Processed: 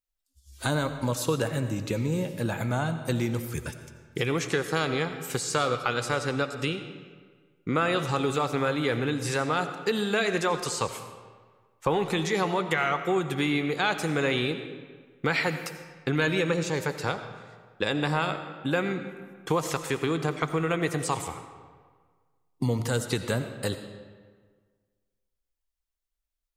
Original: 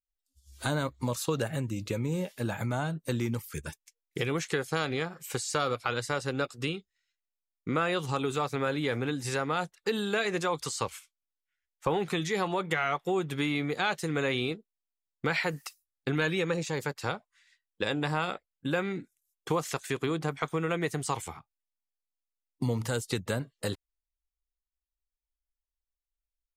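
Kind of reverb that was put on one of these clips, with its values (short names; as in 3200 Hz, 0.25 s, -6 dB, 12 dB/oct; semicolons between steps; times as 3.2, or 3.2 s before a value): digital reverb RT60 1.6 s, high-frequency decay 0.7×, pre-delay 45 ms, DRR 9 dB; gain +3 dB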